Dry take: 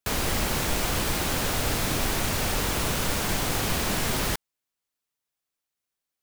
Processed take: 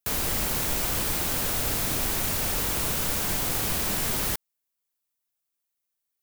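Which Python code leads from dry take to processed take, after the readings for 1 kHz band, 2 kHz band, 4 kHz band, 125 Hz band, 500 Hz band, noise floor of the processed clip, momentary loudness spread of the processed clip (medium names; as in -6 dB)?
-4.0 dB, -3.5 dB, -2.5 dB, -4.0 dB, -4.0 dB, -82 dBFS, 0 LU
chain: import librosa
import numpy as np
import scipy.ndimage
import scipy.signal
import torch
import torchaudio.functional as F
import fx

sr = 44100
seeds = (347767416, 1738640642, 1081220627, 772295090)

y = fx.high_shelf(x, sr, hz=8900.0, db=11.5)
y = y * 10.0 ** (-4.0 / 20.0)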